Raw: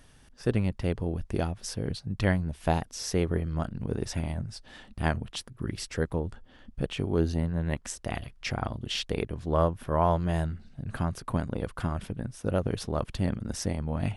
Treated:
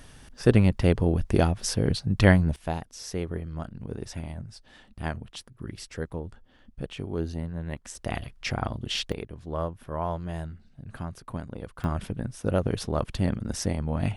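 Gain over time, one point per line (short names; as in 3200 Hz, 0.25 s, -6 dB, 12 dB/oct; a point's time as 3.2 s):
+7.5 dB
from 2.56 s -4.5 dB
from 7.95 s +2 dB
from 9.12 s -6 dB
from 11.84 s +2.5 dB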